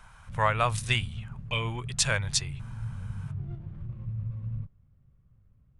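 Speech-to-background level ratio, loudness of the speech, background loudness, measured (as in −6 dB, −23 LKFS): 11.0 dB, −28.0 LKFS, −39.0 LKFS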